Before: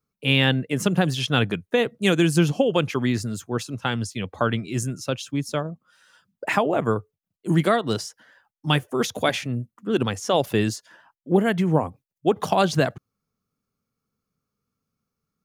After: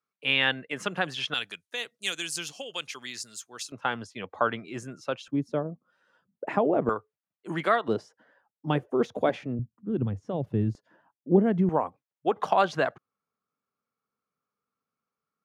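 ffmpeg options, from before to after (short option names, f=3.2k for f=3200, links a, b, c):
-af "asetnsamples=n=441:p=0,asendcmd='1.34 bandpass f 6000;3.72 bandpass f 1000;5.28 bandpass f 370;6.89 bandpass f 1300;7.88 bandpass f 430;9.59 bandpass f 110;10.75 bandpass f 270;11.69 bandpass f 1100',bandpass=f=1.6k:t=q:w=0.78:csg=0"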